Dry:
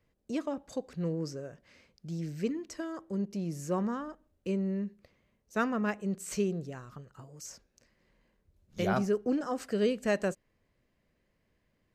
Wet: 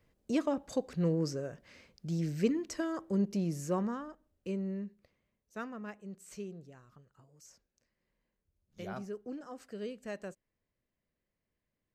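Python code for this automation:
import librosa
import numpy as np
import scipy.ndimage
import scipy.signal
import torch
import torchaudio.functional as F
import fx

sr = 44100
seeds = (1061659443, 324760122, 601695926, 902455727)

y = fx.gain(x, sr, db=fx.line((3.34, 3.0), (4.08, -4.5), (4.7, -4.5), (5.77, -12.5)))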